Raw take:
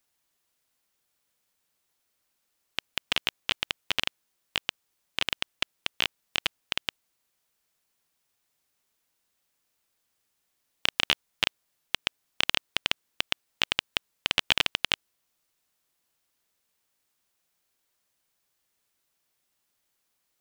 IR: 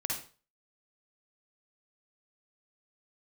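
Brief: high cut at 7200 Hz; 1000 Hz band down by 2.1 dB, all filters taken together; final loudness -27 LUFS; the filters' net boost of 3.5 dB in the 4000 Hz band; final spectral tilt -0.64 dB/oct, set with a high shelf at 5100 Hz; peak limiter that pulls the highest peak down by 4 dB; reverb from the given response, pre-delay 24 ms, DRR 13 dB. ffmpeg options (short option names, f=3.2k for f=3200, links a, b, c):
-filter_complex "[0:a]lowpass=7.2k,equalizer=f=1k:t=o:g=-3,equalizer=f=4k:t=o:g=7,highshelf=f=5.1k:g=-4,alimiter=limit=-5.5dB:level=0:latency=1,asplit=2[a][b];[1:a]atrim=start_sample=2205,adelay=24[c];[b][c]afir=irnorm=-1:irlink=0,volume=-16.5dB[d];[a][d]amix=inputs=2:normalize=0,volume=2dB"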